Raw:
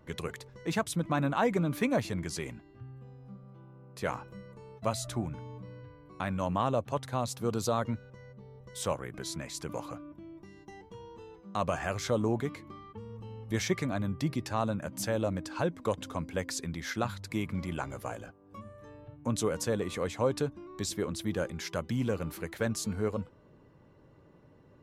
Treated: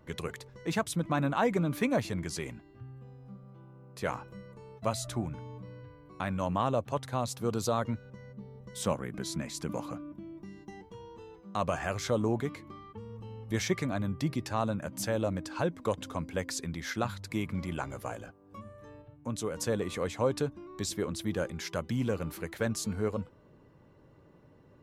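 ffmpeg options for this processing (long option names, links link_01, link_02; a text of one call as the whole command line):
ffmpeg -i in.wav -filter_complex "[0:a]asettb=1/sr,asplit=3[link_01][link_02][link_03];[link_01]atrim=end=8.054[link_04];[link_02]atrim=start=8.05:end=10.83,asetpts=PTS-STARTPTS,afade=type=in:duration=0.004:curve=qsin,afade=type=out:start_time=2.776:duration=0.004:curve=qsin,equalizer=frequency=210:width_type=o:width=0.77:gain=9[link_05];[link_03]atrim=start=10.826[link_06];[link_04][link_05]acrossfade=duration=0.004:curve1=hsin:curve2=qsin[link_07];[link_07][link_06]acrossfade=duration=0.004:curve1=qsin:curve2=hsin,asplit=3[link_08][link_09][link_10];[link_08]atrim=end=19.022[link_11];[link_09]atrim=start=19.018:end=19.572,asetpts=PTS-STARTPTS,volume=-4.5dB[link_12];[link_10]atrim=start=19.568[link_13];[link_11][link_12]acrossfade=duration=0.004:curve1=hsin:curve2=hsin[link_14];[link_14][link_13]acrossfade=duration=0.004:curve1=hsin:curve2=hsin" out.wav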